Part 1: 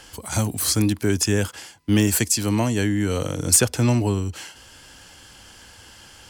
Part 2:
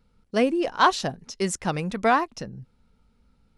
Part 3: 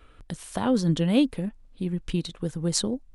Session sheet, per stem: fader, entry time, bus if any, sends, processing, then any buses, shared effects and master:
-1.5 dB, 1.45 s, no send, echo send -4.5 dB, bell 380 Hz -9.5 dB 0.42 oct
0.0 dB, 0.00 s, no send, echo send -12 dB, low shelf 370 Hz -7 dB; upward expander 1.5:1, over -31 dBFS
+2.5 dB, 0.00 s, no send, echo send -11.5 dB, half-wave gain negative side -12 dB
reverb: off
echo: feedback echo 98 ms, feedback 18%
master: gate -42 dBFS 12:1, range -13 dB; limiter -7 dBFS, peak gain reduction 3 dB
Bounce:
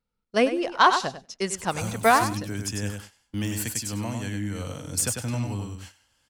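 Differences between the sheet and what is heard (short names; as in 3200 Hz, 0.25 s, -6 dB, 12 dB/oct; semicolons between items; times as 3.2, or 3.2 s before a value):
stem 1 -1.5 dB -> -10.0 dB; stem 2 0.0 dB -> +6.5 dB; stem 3: muted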